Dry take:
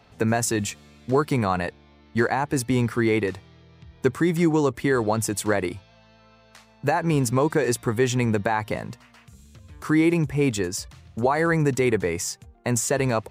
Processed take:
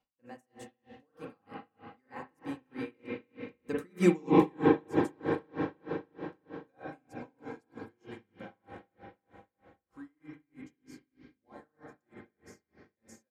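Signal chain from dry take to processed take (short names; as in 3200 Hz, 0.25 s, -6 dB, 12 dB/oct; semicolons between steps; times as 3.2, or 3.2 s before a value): Doppler pass-by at 4.16, 30 m/s, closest 2.6 m; reverb RT60 4.4 s, pre-delay 39 ms, DRR -5.5 dB; in parallel at +0.5 dB: compressor, threshold -33 dBFS, peak gain reduction 18.5 dB; on the sum: comb 3.8 ms, depth 59%; dB-linear tremolo 3.2 Hz, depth 36 dB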